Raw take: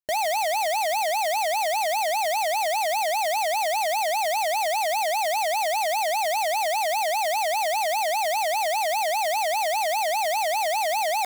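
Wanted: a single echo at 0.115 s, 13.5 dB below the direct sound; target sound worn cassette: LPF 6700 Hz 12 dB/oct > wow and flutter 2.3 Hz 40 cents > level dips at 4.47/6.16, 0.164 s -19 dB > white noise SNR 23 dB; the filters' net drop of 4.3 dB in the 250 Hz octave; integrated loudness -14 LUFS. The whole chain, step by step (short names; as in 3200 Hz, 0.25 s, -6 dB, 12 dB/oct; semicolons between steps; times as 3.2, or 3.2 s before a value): LPF 6700 Hz 12 dB/oct; bell 250 Hz -6 dB; echo 0.115 s -13.5 dB; wow and flutter 2.3 Hz 40 cents; level dips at 4.47/6.16, 0.164 s -19 dB; white noise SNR 23 dB; gain +10 dB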